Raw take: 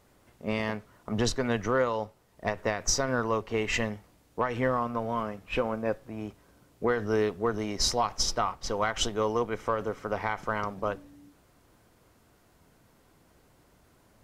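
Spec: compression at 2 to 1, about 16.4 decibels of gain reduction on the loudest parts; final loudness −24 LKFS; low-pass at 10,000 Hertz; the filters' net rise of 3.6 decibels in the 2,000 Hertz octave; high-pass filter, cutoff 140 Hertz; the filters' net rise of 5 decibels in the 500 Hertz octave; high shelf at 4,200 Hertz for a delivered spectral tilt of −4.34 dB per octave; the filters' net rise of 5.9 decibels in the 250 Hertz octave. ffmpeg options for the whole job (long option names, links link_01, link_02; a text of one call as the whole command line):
ffmpeg -i in.wav -af "highpass=140,lowpass=10000,equalizer=frequency=250:width_type=o:gain=6.5,equalizer=frequency=500:width_type=o:gain=4,equalizer=frequency=2000:width_type=o:gain=6,highshelf=frequency=4200:gain=-8.5,acompressor=threshold=-49dB:ratio=2,volume=17.5dB" out.wav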